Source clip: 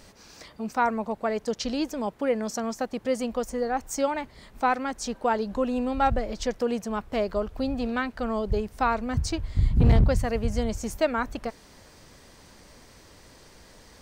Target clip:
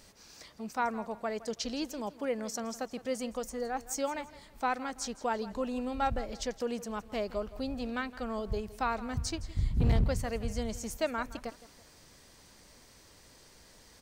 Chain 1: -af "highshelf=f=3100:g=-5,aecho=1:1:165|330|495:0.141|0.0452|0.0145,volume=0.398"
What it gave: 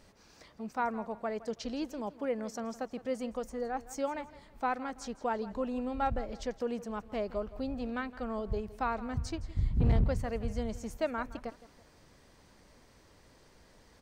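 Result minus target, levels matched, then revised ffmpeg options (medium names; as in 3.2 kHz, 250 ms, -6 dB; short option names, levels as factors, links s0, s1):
8 kHz band -9.0 dB
-af "highshelf=f=3100:g=6.5,aecho=1:1:165|330|495:0.141|0.0452|0.0145,volume=0.398"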